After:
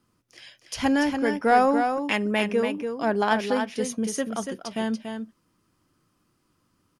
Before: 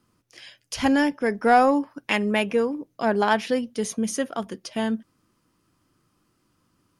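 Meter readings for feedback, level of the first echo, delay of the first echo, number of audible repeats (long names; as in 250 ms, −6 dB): repeats not evenly spaced, −6.5 dB, 286 ms, 1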